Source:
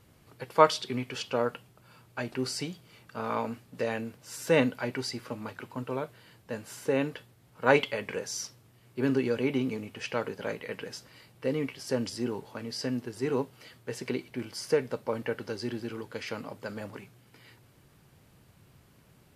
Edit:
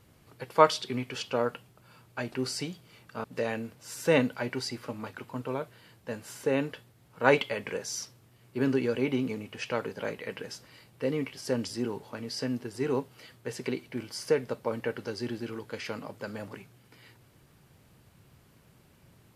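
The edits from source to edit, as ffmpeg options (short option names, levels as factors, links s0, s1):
-filter_complex "[0:a]asplit=2[s0][s1];[s0]atrim=end=3.242[s2];[s1]atrim=start=3.658[s3];[s2][s3]acrossfade=d=0.004:c1=hsin:c2=hsin"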